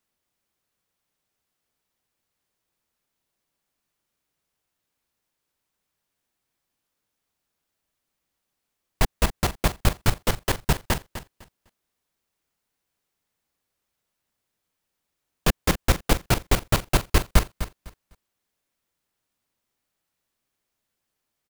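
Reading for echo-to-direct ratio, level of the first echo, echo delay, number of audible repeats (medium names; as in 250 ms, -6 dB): -12.0 dB, -12.0 dB, 252 ms, 2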